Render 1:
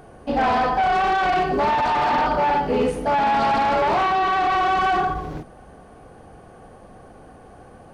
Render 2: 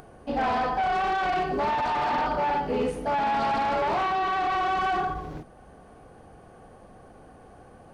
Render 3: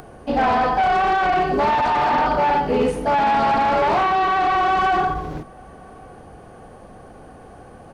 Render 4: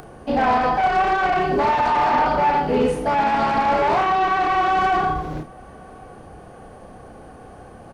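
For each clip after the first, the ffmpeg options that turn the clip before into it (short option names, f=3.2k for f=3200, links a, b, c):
-af "acompressor=mode=upward:threshold=-39dB:ratio=2.5,volume=-6dB"
-filter_complex "[0:a]acrossover=split=380|2400[a][b][c];[c]alimiter=level_in=13.5dB:limit=-24dB:level=0:latency=1:release=65,volume=-13.5dB[d];[a][b][d]amix=inputs=3:normalize=0,asplit=2[e][f];[f]adelay=1166,volume=-28dB,highshelf=f=4k:g=-26.2[g];[e][g]amix=inputs=2:normalize=0,volume=7.5dB"
-filter_complex "[0:a]asoftclip=type=tanh:threshold=-10dB,asplit=2[a][b];[b]adelay=32,volume=-8dB[c];[a][c]amix=inputs=2:normalize=0"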